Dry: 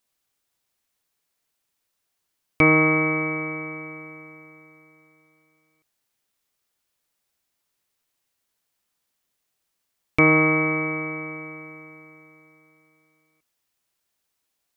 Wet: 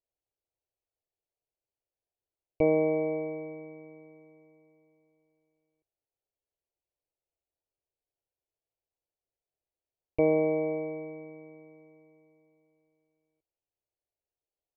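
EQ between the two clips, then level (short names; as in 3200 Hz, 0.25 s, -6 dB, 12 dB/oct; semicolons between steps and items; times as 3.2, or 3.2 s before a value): dynamic EQ 590 Hz, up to +8 dB, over -36 dBFS, Q 1.3; running mean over 25 samples; fixed phaser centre 520 Hz, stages 4; -5.0 dB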